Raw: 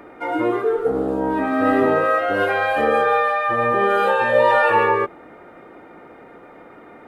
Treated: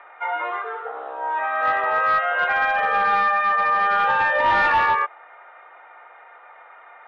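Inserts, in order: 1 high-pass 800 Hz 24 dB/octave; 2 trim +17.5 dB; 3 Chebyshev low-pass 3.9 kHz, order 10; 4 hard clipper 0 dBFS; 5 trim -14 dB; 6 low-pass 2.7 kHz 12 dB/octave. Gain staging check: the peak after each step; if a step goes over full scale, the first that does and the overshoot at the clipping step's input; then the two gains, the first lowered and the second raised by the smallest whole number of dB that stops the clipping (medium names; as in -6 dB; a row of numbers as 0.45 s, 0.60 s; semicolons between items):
-7.5 dBFS, +10.0 dBFS, +9.5 dBFS, 0.0 dBFS, -14.0 dBFS, -13.5 dBFS; step 2, 9.5 dB; step 2 +7.5 dB, step 5 -4 dB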